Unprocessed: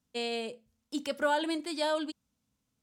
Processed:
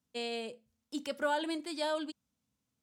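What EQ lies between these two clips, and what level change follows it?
HPF 60 Hz; -3.5 dB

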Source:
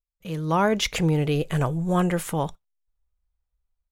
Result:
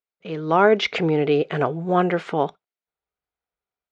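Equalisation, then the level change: speaker cabinet 200–4500 Hz, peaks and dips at 270 Hz +4 dB, 410 Hz +9 dB, 710 Hz +7 dB, 1400 Hz +6 dB, 2200 Hz +4 dB; +1.0 dB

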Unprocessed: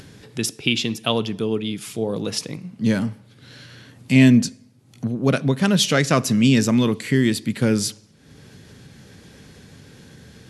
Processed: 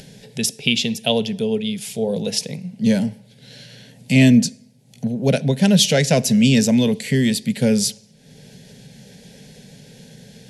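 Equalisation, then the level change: fixed phaser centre 320 Hz, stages 6; +4.5 dB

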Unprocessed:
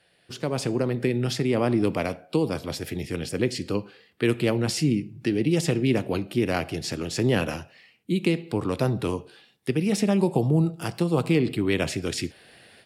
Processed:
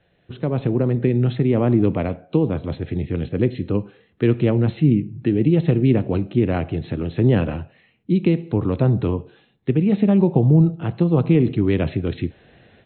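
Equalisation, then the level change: brick-wall FIR low-pass 4200 Hz; tilt -3 dB/oct; 0.0 dB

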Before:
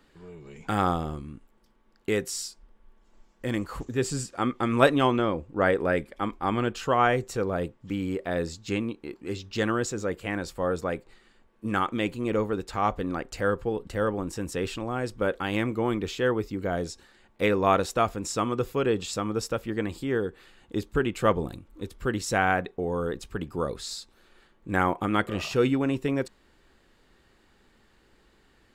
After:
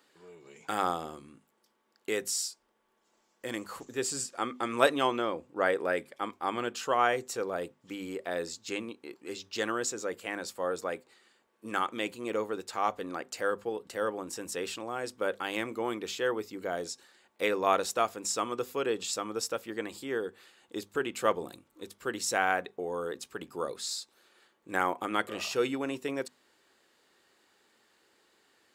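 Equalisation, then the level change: HPF 110 Hz 12 dB/oct; tone controls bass -13 dB, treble +6 dB; notches 50/100/150/200/250 Hz; -3.5 dB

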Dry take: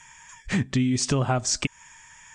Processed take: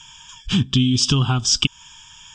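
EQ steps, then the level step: low shelf 410 Hz +5 dB; band shelf 3900 Hz +16 dB 1 oct; fixed phaser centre 2900 Hz, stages 8; +3.0 dB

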